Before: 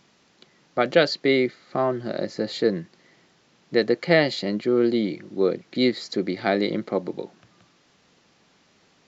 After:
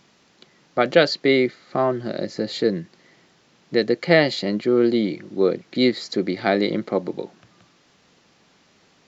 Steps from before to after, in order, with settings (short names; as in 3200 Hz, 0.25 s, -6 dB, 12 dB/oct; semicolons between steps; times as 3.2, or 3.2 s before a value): 1.91–4.03 dynamic EQ 1000 Hz, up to -5 dB, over -34 dBFS, Q 0.75; gain +2.5 dB